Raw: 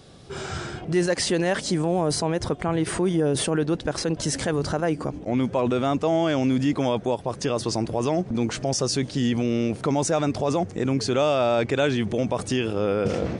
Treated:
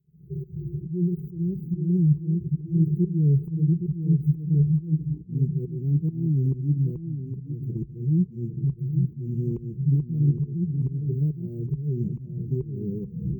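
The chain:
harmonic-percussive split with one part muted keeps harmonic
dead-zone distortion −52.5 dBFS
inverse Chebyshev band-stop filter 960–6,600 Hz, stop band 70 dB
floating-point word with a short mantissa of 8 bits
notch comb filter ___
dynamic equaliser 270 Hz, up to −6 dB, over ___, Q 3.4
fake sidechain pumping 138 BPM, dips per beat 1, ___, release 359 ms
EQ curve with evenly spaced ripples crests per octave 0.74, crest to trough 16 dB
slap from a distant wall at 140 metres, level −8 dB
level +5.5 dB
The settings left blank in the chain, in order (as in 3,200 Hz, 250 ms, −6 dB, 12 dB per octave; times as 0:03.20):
530 Hz, −45 dBFS, −22 dB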